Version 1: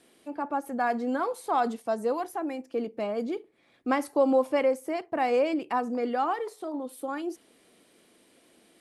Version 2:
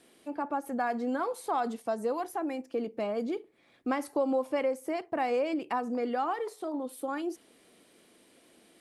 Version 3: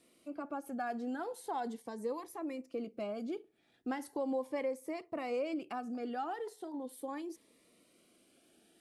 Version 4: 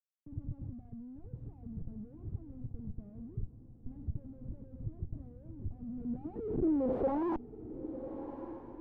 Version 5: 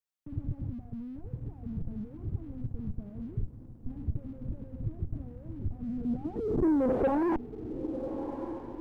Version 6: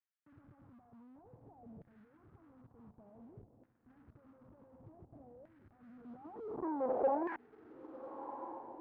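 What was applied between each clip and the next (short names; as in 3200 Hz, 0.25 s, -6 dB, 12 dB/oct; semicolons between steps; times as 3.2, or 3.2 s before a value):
compressor 2:1, threshold -29 dBFS, peak gain reduction 6.5 dB
cascading phaser rising 0.39 Hz; gain -5.5 dB
Schmitt trigger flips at -55 dBFS; low-pass sweep 110 Hz -> 850 Hz, 5.74–7.33; diffused feedback echo 1.213 s, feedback 53%, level -11 dB; gain +7 dB
sample leveller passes 1; gain +3 dB
LFO band-pass saw down 0.55 Hz 630–1800 Hz; gain +1 dB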